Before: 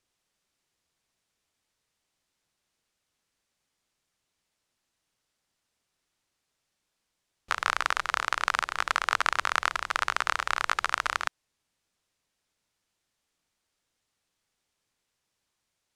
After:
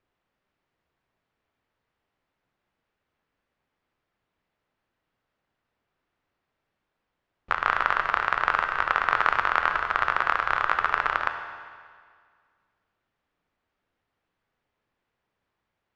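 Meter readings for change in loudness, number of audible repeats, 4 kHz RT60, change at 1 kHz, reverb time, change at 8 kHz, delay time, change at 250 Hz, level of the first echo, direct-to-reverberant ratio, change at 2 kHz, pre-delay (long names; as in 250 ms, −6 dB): +3.5 dB, no echo audible, 1.7 s, +5.0 dB, 1.9 s, below −15 dB, no echo audible, +5.5 dB, no echo audible, 5.5 dB, +3.5 dB, 12 ms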